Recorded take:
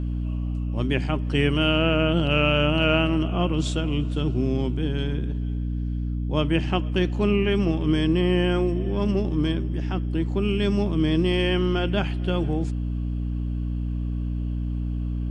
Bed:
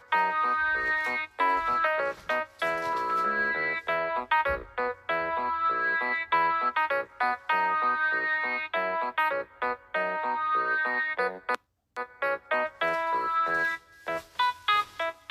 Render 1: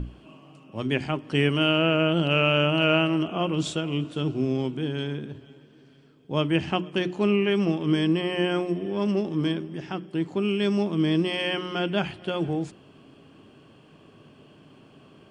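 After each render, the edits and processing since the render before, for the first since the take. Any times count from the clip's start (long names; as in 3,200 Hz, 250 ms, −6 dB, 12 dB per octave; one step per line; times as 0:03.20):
mains-hum notches 60/120/180/240/300/360 Hz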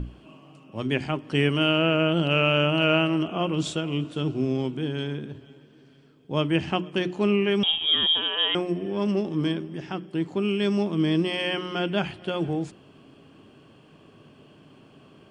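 0:07.63–0:08.55: voice inversion scrambler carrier 3,500 Hz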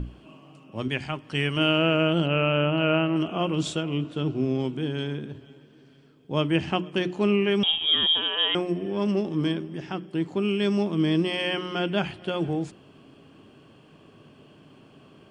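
0:00.88–0:01.57: parametric band 330 Hz −7.5 dB 2.1 octaves
0:02.26–0:03.16: high-frequency loss of the air 290 metres
0:03.82–0:04.59: high-shelf EQ 5,500 Hz → 7,800 Hz −11 dB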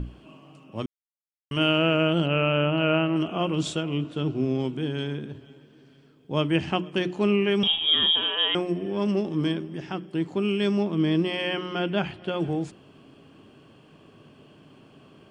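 0:00.86–0:01.51: silence
0:07.59–0:08.32: double-tracking delay 41 ms −9 dB
0:10.71–0:12.40: high-shelf EQ 6,700 Hz −10.5 dB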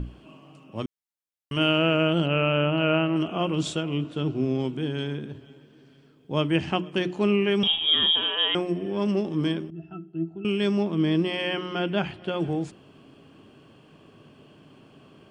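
0:09.70–0:10.45: resonances in every octave E, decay 0.12 s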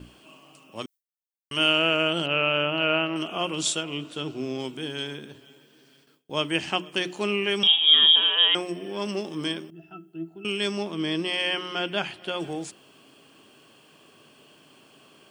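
RIAA equalisation recording
noise gate with hold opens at −48 dBFS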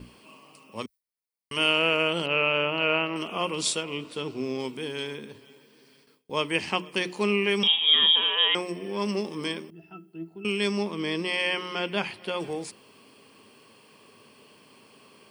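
EQ curve with evenly spaced ripples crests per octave 0.9, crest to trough 7 dB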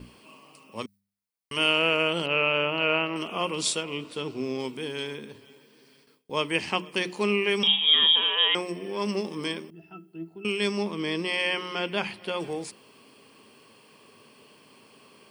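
hum removal 99.45 Hz, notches 2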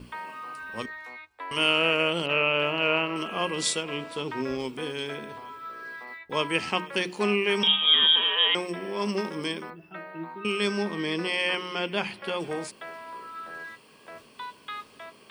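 mix in bed −13 dB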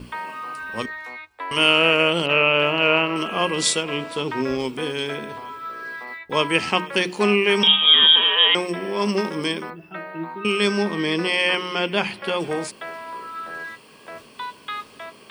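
level +6.5 dB
brickwall limiter −3 dBFS, peak gain reduction 1 dB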